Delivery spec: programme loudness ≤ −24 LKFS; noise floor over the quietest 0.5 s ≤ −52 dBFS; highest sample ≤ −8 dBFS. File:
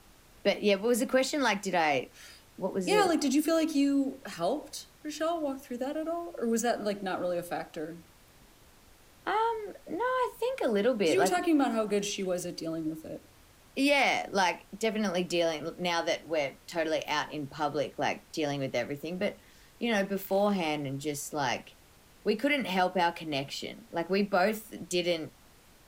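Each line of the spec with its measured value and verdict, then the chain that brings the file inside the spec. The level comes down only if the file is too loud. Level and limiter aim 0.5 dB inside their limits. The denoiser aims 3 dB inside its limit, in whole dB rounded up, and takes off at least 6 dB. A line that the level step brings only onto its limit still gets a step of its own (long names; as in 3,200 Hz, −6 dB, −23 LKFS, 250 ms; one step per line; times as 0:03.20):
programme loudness −30.0 LKFS: in spec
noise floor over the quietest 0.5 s −58 dBFS: in spec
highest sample −12.5 dBFS: in spec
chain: no processing needed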